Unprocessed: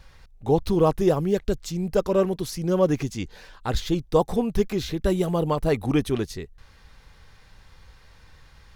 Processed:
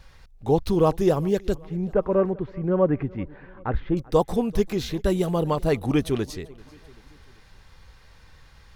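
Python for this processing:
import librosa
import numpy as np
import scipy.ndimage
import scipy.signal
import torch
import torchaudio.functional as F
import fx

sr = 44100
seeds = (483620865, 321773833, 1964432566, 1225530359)

y = fx.lowpass(x, sr, hz=2000.0, slope=24, at=(1.61, 3.97))
y = fx.echo_feedback(y, sr, ms=388, feedback_pct=50, wet_db=-23.5)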